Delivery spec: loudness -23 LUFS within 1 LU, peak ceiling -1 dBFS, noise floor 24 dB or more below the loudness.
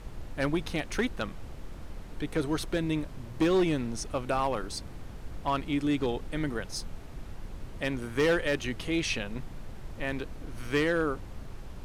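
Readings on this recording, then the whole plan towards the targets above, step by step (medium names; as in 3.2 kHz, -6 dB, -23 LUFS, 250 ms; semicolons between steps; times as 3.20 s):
clipped samples 0.8%; clipping level -20.0 dBFS; noise floor -44 dBFS; noise floor target -55 dBFS; loudness -31.0 LUFS; peak level -20.0 dBFS; loudness target -23.0 LUFS
-> clip repair -20 dBFS; noise print and reduce 11 dB; trim +8 dB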